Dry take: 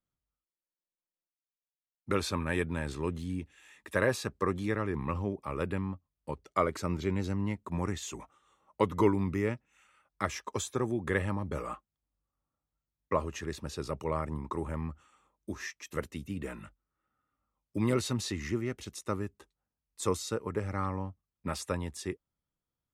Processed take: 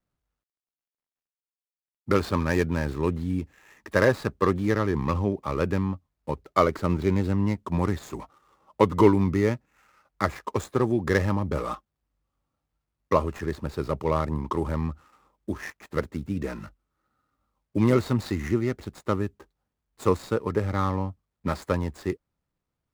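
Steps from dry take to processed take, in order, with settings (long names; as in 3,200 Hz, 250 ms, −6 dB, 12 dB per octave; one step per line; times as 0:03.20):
running median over 15 samples
level +8 dB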